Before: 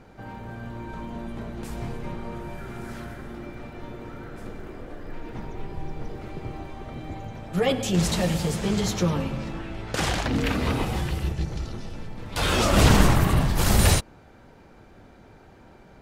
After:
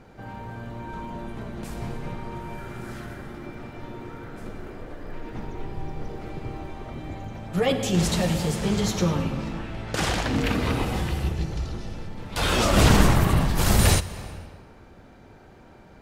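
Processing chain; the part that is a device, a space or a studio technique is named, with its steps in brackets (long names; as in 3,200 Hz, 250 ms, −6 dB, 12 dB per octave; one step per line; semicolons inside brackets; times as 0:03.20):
compressed reverb return (on a send at −7 dB: convolution reverb RT60 1.6 s, pre-delay 37 ms + downward compressor, threshold −22 dBFS, peak gain reduction 10 dB)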